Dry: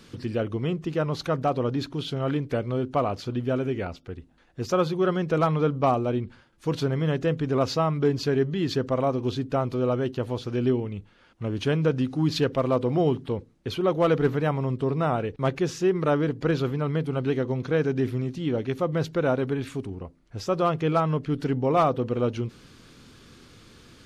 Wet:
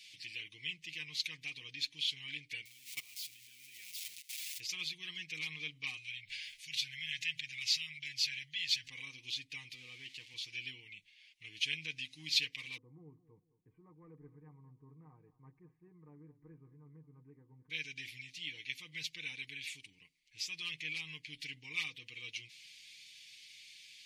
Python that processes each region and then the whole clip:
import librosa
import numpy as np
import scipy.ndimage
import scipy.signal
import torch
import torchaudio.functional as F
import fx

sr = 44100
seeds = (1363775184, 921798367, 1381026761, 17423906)

y = fx.chain(x, sr, fx.crossing_spikes(level_db=-24.0),
    fx.level_steps(step_db=21), at=(2.65, 4.6))
y = fx.chain(y, sr, fx.curve_eq(hz=(110.0, 400.0, 710.0, 1600.0), db=(0, -21, -29, 1)),
    fx.sustainer(db_per_s=47.0), at=(5.97, 8.88))
y = fx.chain(y, sr, fx.crossing_spikes(level_db=-28.0),
    fx.bandpass_edges(low_hz=110.0, high_hz=4100.0),
    fx.high_shelf(hz=2100.0, db=-7.5), at=(9.75, 10.34))
y = fx.chain(y, sr, fx.steep_lowpass(hz=1200.0, slope=48),
    fx.echo_feedback(ms=215, feedback_pct=37, wet_db=-16.5), at=(12.77, 17.7))
y = scipy.signal.sosfilt(scipy.signal.ellip(4, 1.0, 40, 2200.0, 'highpass', fs=sr, output='sos'), y)
y = fx.high_shelf(y, sr, hz=3300.0, db=-10.0)
y = y + 0.71 * np.pad(y, (int(6.5 * sr / 1000.0), 0))[:len(y)]
y = F.gain(torch.from_numpy(y), 6.0).numpy()